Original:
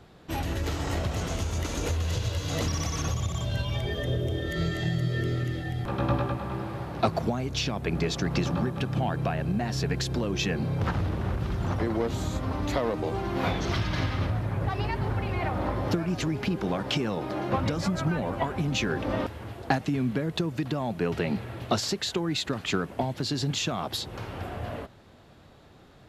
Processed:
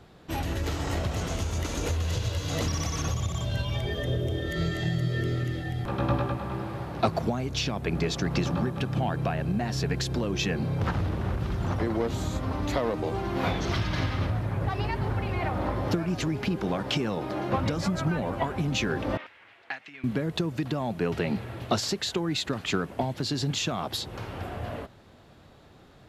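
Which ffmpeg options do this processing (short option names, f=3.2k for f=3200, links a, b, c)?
-filter_complex "[0:a]asettb=1/sr,asplit=3[a][b][c];[a]atrim=end=19.174[d];[b]atrim=start=19.17:end=20.04,asetpts=PTS-STARTPTS,afade=t=in:d=0.004:c=qsin,afade=t=out:st=0.866:d=0.004:c=qsin,bandpass=f=2.2k:t=q:w=2.2[e];[c]atrim=start=20.036[f];[d][e]acrossfade=d=0.004:c1=hsin:c2=qsin[g];[g][f]acrossfade=d=0.004:c1=qsin:c2=hsin"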